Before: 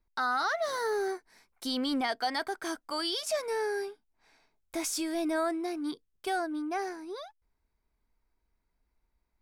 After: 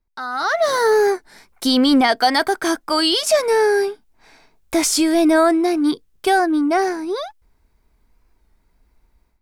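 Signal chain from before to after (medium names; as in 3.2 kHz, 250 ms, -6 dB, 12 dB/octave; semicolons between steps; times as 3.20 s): 2.17–2.60 s: treble shelf 10 kHz +5.5 dB; level rider gain up to 16 dB; bass shelf 460 Hz +3.5 dB; warped record 33 1/3 rpm, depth 100 cents; trim -1.5 dB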